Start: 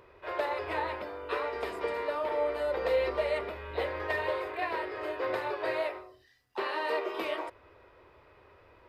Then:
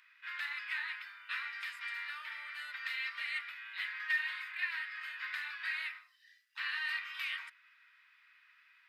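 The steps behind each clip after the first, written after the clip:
Butterworth high-pass 1,600 Hz 36 dB per octave
high-shelf EQ 3,100 Hz −8.5 dB
level +5.5 dB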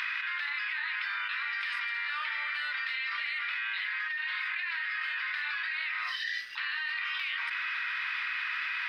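Savitzky-Golay smoothing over 15 samples
envelope flattener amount 100%
level −5 dB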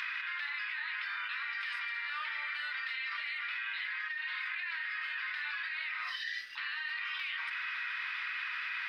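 flanger 0.71 Hz, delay 3.5 ms, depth 5.5 ms, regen −55%

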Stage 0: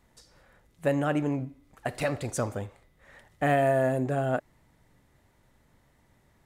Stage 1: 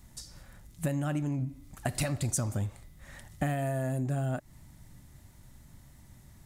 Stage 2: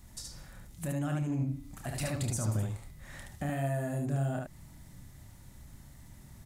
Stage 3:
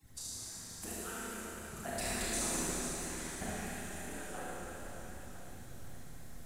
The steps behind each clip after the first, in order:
bass and treble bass +11 dB, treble +12 dB; downward compressor 16 to 1, threshold −28 dBFS, peak gain reduction 13.5 dB; parametric band 460 Hz −12 dB 0.22 octaves; level +1.5 dB
brickwall limiter −26.5 dBFS, peak gain reduction 10.5 dB; on a send: ambience of single reflections 28 ms −8 dB, 73 ms −3 dB
harmonic-percussive split with one part muted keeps percussive; four-comb reverb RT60 3.8 s, combs from 25 ms, DRR −8 dB; feedback echo with a swinging delay time 486 ms, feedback 64%, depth 133 cents, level −12 dB; level −2 dB

